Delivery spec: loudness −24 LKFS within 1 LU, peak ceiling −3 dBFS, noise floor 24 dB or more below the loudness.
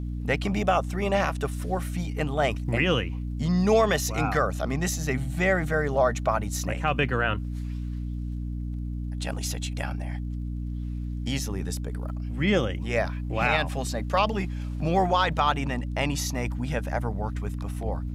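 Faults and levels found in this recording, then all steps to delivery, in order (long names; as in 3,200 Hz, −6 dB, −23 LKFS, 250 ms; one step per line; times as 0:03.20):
crackle rate 40 per second; mains hum 60 Hz; hum harmonics up to 300 Hz; level of the hum −29 dBFS; integrated loudness −27.0 LKFS; sample peak −10.0 dBFS; target loudness −24.0 LKFS
→ click removal
mains-hum notches 60/120/180/240/300 Hz
level +3 dB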